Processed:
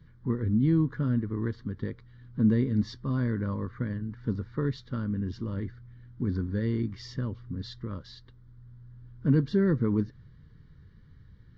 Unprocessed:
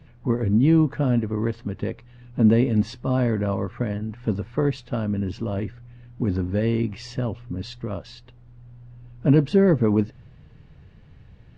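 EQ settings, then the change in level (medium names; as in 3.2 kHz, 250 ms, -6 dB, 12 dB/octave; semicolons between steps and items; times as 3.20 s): static phaser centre 2.6 kHz, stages 6; -4.5 dB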